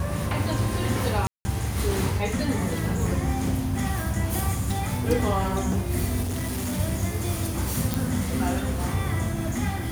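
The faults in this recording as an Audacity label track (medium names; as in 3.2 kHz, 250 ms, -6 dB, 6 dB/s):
1.270000	1.450000	dropout 180 ms
6.220000	6.800000	clipped -25 dBFS
7.940000	7.940000	pop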